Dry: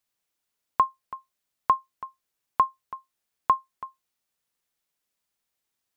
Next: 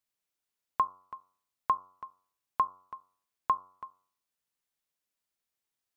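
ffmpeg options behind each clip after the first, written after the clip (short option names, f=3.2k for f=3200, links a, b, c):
-af "bandreject=f=92.74:t=h:w=4,bandreject=f=185.48:t=h:w=4,bandreject=f=278.22:t=h:w=4,bandreject=f=370.96:t=h:w=4,bandreject=f=463.7:t=h:w=4,bandreject=f=556.44:t=h:w=4,bandreject=f=649.18:t=h:w=4,bandreject=f=741.92:t=h:w=4,bandreject=f=834.66:t=h:w=4,bandreject=f=927.4:t=h:w=4,bandreject=f=1.02014k:t=h:w=4,bandreject=f=1.11288k:t=h:w=4,bandreject=f=1.20562k:t=h:w=4,bandreject=f=1.29836k:t=h:w=4,bandreject=f=1.3911k:t=h:w=4,volume=-6dB"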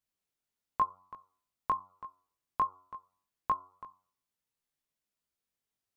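-af "lowshelf=f=400:g=7,flanger=delay=18.5:depth=2.1:speed=1.4"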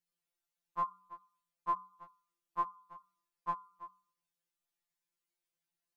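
-af "afftfilt=real='re*2.83*eq(mod(b,8),0)':imag='im*2.83*eq(mod(b,8),0)':win_size=2048:overlap=0.75"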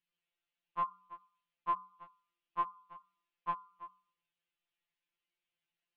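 -af "lowpass=f=2.9k:t=q:w=2.8,volume=-1dB"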